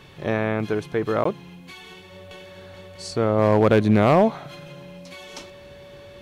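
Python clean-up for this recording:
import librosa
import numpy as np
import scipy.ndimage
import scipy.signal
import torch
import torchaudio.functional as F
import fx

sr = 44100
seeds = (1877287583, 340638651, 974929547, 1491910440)

y = fx.fix_declip(x, sr, threshold_db=-9.5)
y = fx.notch(y, sr, hz=570.0, q=30.0)
y = fx.fix_interpolate(y, sr, at_s=(1.24,), length_ms=14.0)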